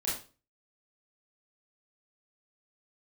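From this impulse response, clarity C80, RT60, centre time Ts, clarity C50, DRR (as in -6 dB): 10.0 dB, 0.35 s, 42 ms, 4.0 dB, -7.5 dB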